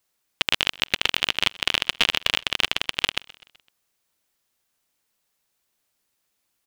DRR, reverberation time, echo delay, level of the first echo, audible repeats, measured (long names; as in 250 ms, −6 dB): no reverb audible, no reverb audible, 127 ms, −22.5 dB, 3